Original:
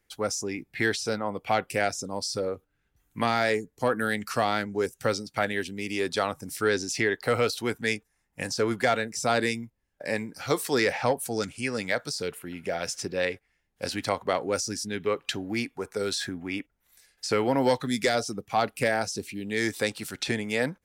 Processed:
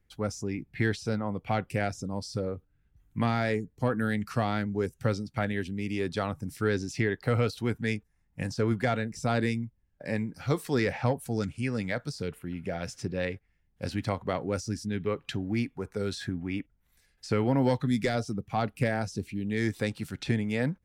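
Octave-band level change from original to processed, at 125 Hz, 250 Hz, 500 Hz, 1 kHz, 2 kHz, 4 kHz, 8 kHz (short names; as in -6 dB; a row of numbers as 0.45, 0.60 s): +7.0, +1.5, -4.0, -5.5, -6.0, -8.5, -11.0 dB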